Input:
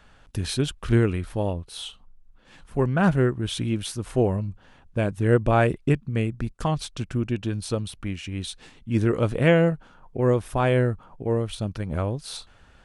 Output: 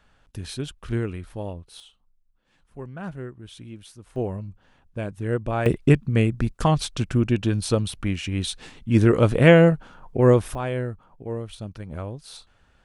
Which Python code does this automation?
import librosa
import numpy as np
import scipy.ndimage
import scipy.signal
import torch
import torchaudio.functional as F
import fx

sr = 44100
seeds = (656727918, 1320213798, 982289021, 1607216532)

y = fx.gain(x, sr, db=fx.steps((0.0, -6.5), (1.8, -14.5), (4.16, -6.0), (5.66, 5.0), (10.55, -6.5)))